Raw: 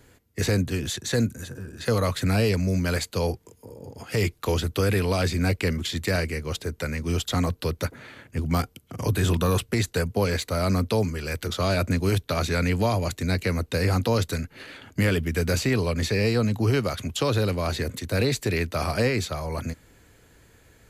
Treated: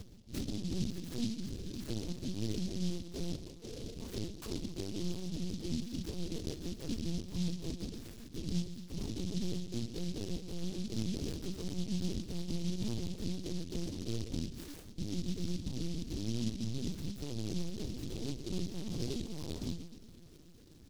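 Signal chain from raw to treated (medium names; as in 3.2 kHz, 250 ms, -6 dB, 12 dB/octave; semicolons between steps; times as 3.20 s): 14.90–16.94 s: peaking EQ 710 Hz -12.5 dB 1.7 oct; low-pass that closes with the level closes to 580 Hz, closed at -23 dBFS; peak limiter -23 dBFS, peak gain reduction 8.5 dB; saturation -34.5 dBFS, distortion -9 dB; inverted gate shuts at -52 dBFS, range -33 dB; doubling 17 ms -5.5 dB; two-band feedback delay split 1.4 kHz, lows 127 ms, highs 699 ms, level -10.5 dB; reverberation RT60 0.30 s, pre-delay 3 ms, DRR 5 dB; LPC vocoder at 8 kHz pitch kept; delay time shaken by noise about 4.3 kHz, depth 0.16 ms; trim +15 dB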